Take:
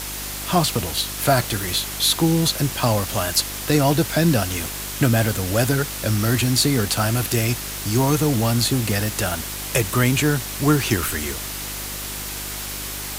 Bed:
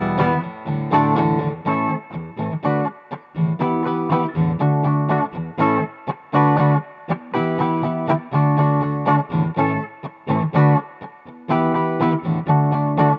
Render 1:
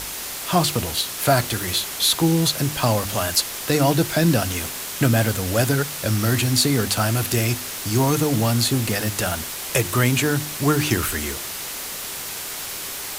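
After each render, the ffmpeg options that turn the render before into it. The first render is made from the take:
-af "bandreject=f=50:t=h:w=4,bandreject=f=100:t=h:w=4,bandreject=f=150:t=h:w=4,bandreject=f=200:t=h:w=4,bandreject=f=250:t=h:w=4,bandreject=f=300:t=h:w=4,bandreject=f=350:t=h:w=4"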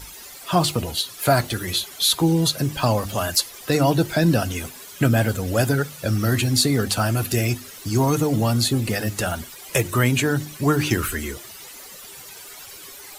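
-af "afftdn=nr=14:nf=-31"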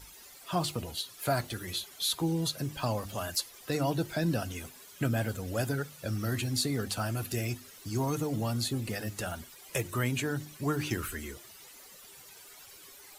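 -af "volume=0.266"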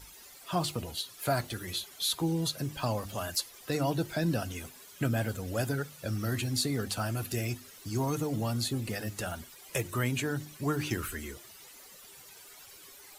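-af anull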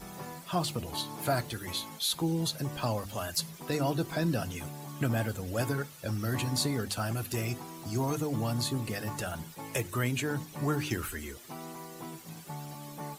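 -filter_complex "[1:a]volume=0.0531[s0];[0:a][s0]amix=inputs=2:normalize=0"

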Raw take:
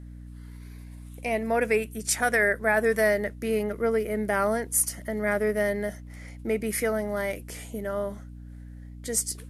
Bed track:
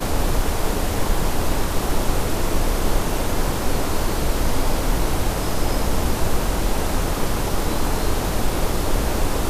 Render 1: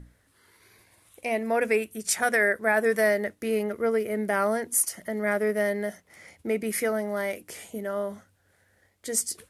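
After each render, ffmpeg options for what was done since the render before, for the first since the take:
-af "bandreject=f=60:t=h:w=6,bandreject=f=120:t=h:w=6,bandreject=f=180:t=h:w=6,bandreject=f=240:t=h:w=6,bandreject=f=300:t=h:w=6"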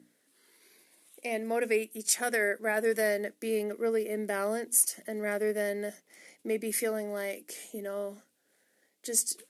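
-af "highpass=f=240:w=0.5412,highpass=f=240:w=1.3066,equalizer=f=1100:w=0.68:g=-10"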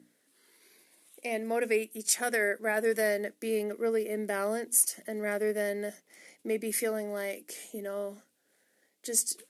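-af anull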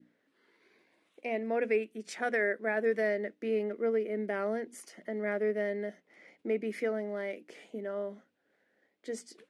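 -af "lowpass=2400,adynamicequalizer=threshold=0.00501:dfrequency=1000:dqfactor=1.1:tfrequency=1000:tqfactor=1.1:attack=5:release=100:ratio=0.375:range=2.5:mode=cutabove:tftype=bell"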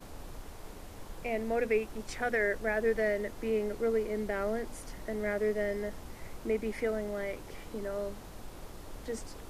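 -filter_complex "[1:a]volume=0.0562[s0];[0:a][s0]amix=inputs=2:normalize=0"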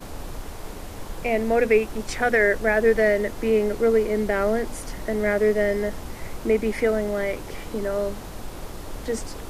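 -af "volume=3.35"

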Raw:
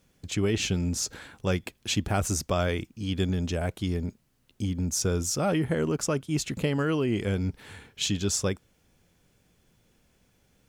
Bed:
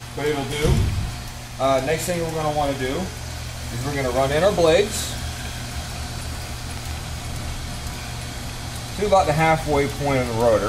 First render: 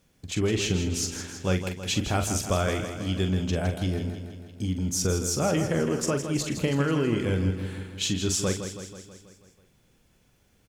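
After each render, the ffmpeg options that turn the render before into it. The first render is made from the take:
-filter_complex "[0:a]asplit=2[s0][s1];[s1]adelay=43,volume=0.376[s2];[s0][s2]amix=inputs=2:normalize=0,asplit=2[s3][s4];[s4]aecho=0:1:162|324|486|648|810|972|1134:0.355|0.209|0.124|0.0729|0.043|0.0254|0.015[s5];[s3][s5]amix=inputs=2:normalize=0"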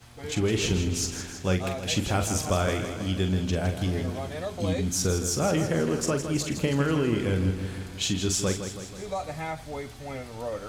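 -filter_complex "[1:a]volume=0.158[s0];[0:a][s0]amix=inputs=2:normalize=0"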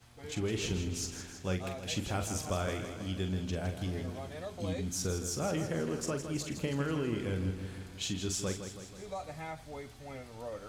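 -af "volume=0.376"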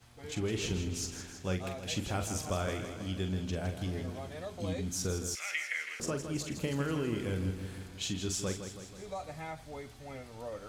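-filter_complex "[0:a]asettb=1/sr,asplit=3[s0][s1][s2];[s0]atrim=end=5.354[s3];[s1]atrim=start=5.35:end=6,asetpts=PTS-STARTPTS,afade=t=in:d=0.004:c=qsin,afade=t=out:st=0.646:d=0.004:c=qsin,highpass=f=2100:t=q:w=11[s4];[s2]atrim=start=5.996[s5];[s3][s4]acrossfade=d=0.004:c1=hsin:c2=qsin[s6];[s6][s5]acrossfade=d=0.004:c1=qsin:c2=hsin,asettb=1/sr,asplit=3[s7][s8][s9];[s7]atrim=end=6.604[s10];[s8]atrim=start=6.6:end=7.87,asetpts=PTS-STARTPTS,afade=t=in:d=0.004:c=qsin,afade=t=out:st=1.266:d=0.004:c=qsin,highshelf=f=8500:g=6.5[s11];[s9]atrim=start=7.866[s12];[s10][s11]acrossfade=d=0.004:c1=hsin:c2=qsin[s13];[s13][s12]acrossfade=d=0.004:c1=qsin:c2=hsin"

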